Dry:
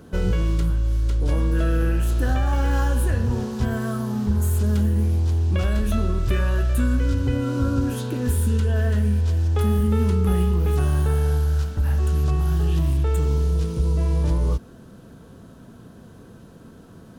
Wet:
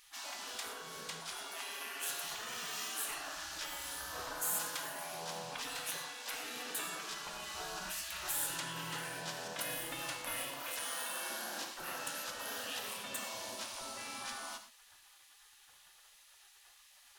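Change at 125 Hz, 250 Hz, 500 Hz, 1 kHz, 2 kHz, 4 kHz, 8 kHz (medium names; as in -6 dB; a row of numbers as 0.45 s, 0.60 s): -39.0 dB, -29.0 dB, -19.0 dB, -8.5 dB, -5.5 dB, +0.5 dB, +1.0 dB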